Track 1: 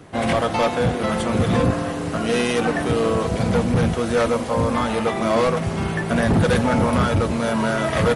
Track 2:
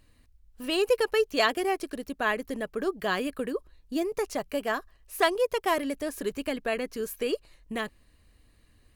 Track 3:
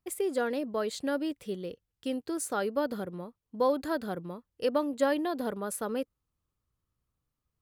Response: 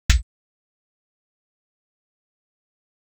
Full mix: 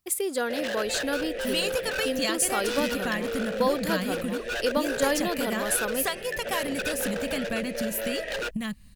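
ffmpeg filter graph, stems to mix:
-filter_complex "[0:a]asplit=3[link_01][link_02][link_03];[link_01]bandpass=frequency=530:width_type=q:width=8,volume=0dB[link_04];[link_02]bandpass=frequency=1840:width_type=q:width=8,volume=-6dB[link_05];[link_03]bandpass=frequency=2480:width_type=q:width=8,volume=-9dB[link_06];[link_04][link_05][link_06]amix=inputs=3:normalize=0,aeval=exprs='0.0473*(abs(mod(val(0)/0.0473+3,4)-2)-1)':channel_layout=same,adelay=350,volume=-1.5dB[link_07];[1:a]lowshelf=frequency=270:width_type=q:width=3:gain=10,acompressor=threshold=-28dB:ratio=12,adelay=850,volume=-0.5dB[link_08];[2:a]volume=0.5dB[link_09];[link_07][link_08][link_09]amix=inputs=3:normalize=0,highshelf=frequency=2300:gain=11.5"

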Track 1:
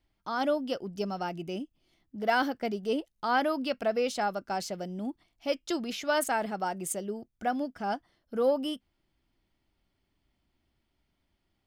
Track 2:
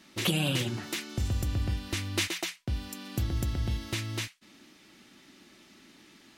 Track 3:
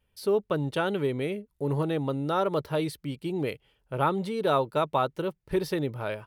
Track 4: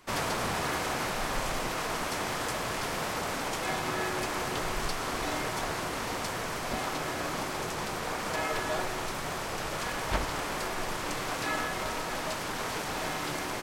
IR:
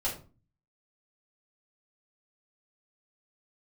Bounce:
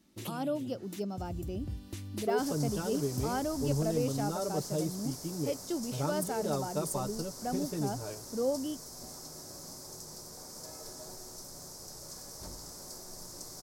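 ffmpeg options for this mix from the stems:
-filter_complex "[0:a]volume=0dB,asplit=2[link_01][link_02];[1:a]volume=-5dB[link_03];[2:a]aecho=1:1:6.8:0.65,adelay=2000,volume=-5dB[link_04];[3:a]highshelf=frequency=3900:width_type=q:width=3:gain=10.5,adelay=2300,volume=-14dB,asplit=2[link_05][link_06];[link_06]volume=-9dB[link_07];[link_02]apad=whole_len=281044[link_08];[link_03][link_08]sidechaincompress=threshold=-34dB:ratio=10:attack=5.2:release=247[link_09];[4:a]atrim=start_sample=2205[link_10];[link_07][link_10]afir=irnorm=-1:irlink=0[link_11];[link_01][link_09][link_04][link_05][link_11]amix=inputs=5:normalize=0,highpass=frequency=63:poles=1,equalizer=frequency=2100:width=0.36:gain=-14"

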